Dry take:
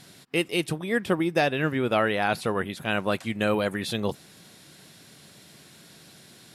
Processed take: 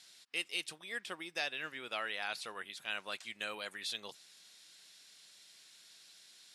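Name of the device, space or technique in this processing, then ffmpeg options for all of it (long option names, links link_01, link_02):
piezo pickup straight into a mixer: -af "lowpass=5500,aderivative,volume=1dB"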